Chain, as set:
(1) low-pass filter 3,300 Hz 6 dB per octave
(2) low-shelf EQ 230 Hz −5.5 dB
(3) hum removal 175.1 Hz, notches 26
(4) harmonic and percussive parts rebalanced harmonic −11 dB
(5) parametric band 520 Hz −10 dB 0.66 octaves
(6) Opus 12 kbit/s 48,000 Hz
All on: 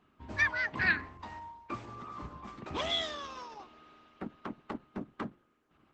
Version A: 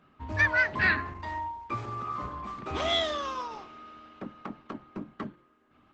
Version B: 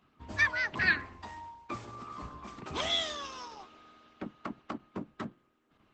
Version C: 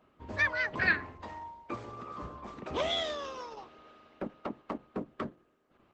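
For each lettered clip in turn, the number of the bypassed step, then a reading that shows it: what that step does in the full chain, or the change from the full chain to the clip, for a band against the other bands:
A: 4, 1 kHz band +3.5 dB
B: 1, change in integrated loudness +1.5 LU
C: 5, 500 Hz band +5.5 dB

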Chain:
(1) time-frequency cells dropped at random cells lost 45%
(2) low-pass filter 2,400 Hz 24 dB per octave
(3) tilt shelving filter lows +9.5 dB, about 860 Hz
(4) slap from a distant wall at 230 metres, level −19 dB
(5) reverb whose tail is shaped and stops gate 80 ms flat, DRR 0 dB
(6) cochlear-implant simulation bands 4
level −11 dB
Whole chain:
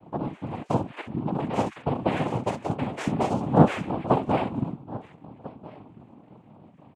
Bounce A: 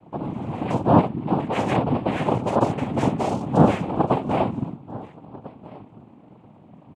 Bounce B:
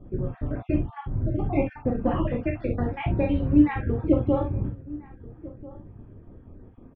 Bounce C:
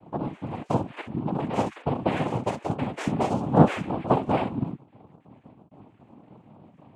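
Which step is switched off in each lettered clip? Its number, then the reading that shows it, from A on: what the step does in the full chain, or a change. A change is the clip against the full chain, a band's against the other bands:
1, change in crest factor −4.0 dB
6, 1 kHz band −8.0 dB
4, change in momentary loudness spread −7 LU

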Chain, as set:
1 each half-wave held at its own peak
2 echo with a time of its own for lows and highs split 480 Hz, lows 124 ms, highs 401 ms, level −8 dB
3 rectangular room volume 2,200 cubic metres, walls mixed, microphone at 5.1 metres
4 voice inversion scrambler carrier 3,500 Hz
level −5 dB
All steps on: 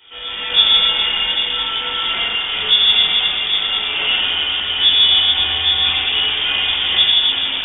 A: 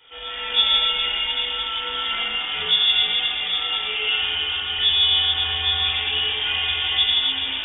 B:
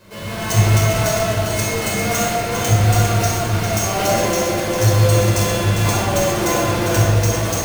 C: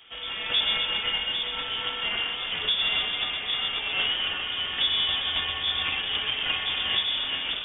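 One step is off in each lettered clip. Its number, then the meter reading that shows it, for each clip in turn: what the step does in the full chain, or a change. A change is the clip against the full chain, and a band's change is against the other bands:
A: 1, distortion level −5 dB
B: 4, 2 kHz band −20.5 dB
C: 3, change in momentary loudness spread −3 LU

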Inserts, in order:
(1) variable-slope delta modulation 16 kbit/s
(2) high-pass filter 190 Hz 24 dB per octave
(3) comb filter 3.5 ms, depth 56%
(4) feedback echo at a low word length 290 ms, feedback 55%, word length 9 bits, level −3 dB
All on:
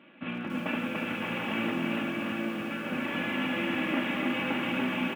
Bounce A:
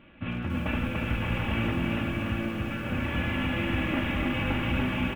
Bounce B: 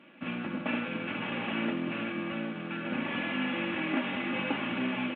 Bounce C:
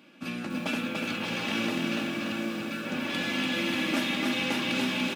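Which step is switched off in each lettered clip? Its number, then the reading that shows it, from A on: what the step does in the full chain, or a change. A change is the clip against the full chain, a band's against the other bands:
2, 125 Hz band +12.0 dB
4, change in integrated loudness −2.0 LU
1, 4 kHz band +6.0 dB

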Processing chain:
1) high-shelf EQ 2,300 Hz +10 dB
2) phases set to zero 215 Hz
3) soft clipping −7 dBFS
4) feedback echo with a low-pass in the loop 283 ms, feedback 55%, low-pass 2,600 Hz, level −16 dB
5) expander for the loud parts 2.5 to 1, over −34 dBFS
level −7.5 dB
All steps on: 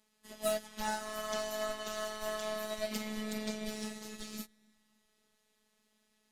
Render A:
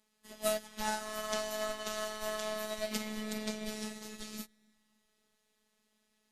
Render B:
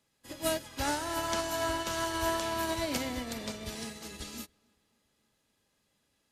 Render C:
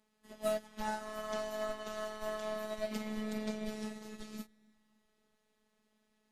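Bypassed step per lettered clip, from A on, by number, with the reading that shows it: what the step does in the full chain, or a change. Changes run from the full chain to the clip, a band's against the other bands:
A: 3, distortion level −20 dB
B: 2, 125 Hz band +3.5 dB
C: 1, 8 kHz band −7.5 dB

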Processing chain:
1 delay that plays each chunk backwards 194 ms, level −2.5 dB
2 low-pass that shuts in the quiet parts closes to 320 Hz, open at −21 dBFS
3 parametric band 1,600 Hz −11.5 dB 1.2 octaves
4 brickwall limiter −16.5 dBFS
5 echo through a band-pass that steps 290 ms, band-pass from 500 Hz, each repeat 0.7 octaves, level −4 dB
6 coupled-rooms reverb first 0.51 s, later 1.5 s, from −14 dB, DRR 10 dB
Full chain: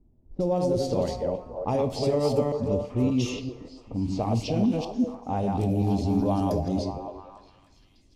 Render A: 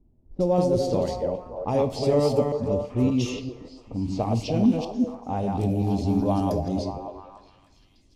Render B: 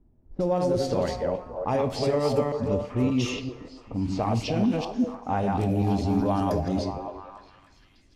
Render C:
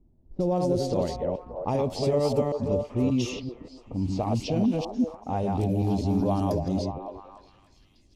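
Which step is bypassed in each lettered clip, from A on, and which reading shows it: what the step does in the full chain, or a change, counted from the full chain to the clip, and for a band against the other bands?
4, change in momentary loudness spread +2 LU
3, 2 kHz band +6.0 dB
6, echo-to-direct ratio −5.5 dB to −7.5 dB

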